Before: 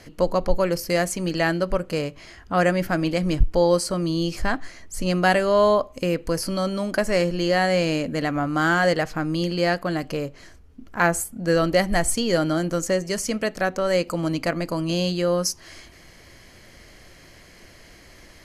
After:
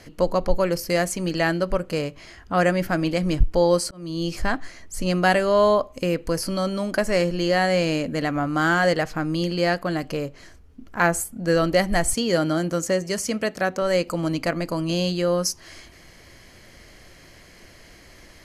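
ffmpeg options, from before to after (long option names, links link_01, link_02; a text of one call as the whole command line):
ffmpeg -i in.wav -filter_complex "[0:a]asettb=1/sr,asplit=3[link_01][link_02][link_03];[link_01]atrim=end=12.134[link_04];[link_02]atrim=start=12.13:end=13.82,asetpts=PTS-STARTPTS,afade=type=in:duration=0.004:curve=qsin,afade=type=out:start_time=1.686:duration=0.004:curve=qsin,highpass=55[link_05];[link_03]atrim=start=13.816[link_06];[link_04][link_05]acrossfade=duration=0.004:curve1=hsin:curve2=qsin[link_07];[link_07][link_06]acrossfade=duration=0.004:curve1=qsin:curve2=hsin,asplit=2[link_08][link_09];[link_08]atrim=end=3.91,asetpts=PTS-STARTPTS,afade=type=out:start_time=3.906:duration=0.004:curve=hsin[link_10];[link_09]atrim=start=3.91,asetpts=PTS-STARTPTS,afade=type=in:duration=0.4[link_11];[link_10][link_11]concat=n=2:v=0:a=1" out.wav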